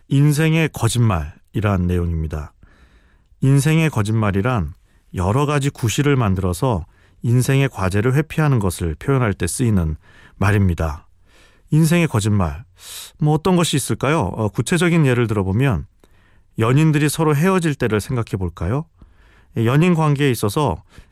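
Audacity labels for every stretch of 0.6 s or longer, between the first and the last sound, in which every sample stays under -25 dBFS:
2.450000	3.430000	silence
10.950000	11.720000	silence
15.810000	16.580000	silence
18.820000	19.570000	silence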